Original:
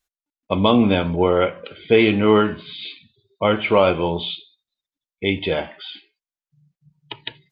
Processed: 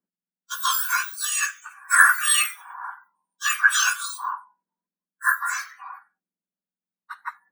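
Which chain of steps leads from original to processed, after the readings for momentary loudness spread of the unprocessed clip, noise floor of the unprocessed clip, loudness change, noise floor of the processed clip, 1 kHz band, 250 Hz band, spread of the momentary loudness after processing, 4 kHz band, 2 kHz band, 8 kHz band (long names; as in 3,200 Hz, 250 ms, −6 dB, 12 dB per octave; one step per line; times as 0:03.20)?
18 LU, below −85 dBFS, −2.0 dB, below −85 dBFS, −1.5 dB, below −40 dB, 21 LU, −2.5 dB, +8.0 dB, can't be measured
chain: frequency axis turned over on the octave scale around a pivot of 1,900 Hz
parametric band 1,600 Hz +13 dB 0.95 octaves
multiband upward and downward expander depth 40%
level −4.5 dB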